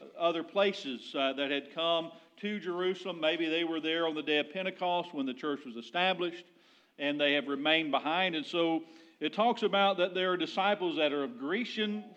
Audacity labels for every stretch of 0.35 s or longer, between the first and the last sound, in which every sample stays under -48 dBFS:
6.420000	6.990000	silence